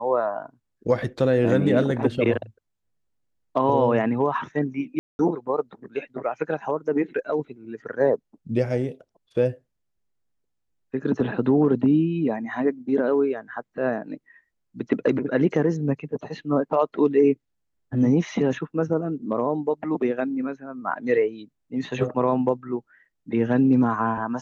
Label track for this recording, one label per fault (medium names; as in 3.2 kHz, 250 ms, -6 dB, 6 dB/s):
4.990000	5.190000	dropout 201 ms